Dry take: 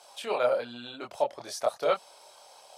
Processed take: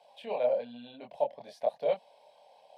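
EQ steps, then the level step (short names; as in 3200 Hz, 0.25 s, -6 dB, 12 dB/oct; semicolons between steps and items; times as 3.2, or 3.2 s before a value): air absorption 470 m; high shelf 6000 Hz +9.5 dB; fixed phaser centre 350 Hz, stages 6; 0.0 dB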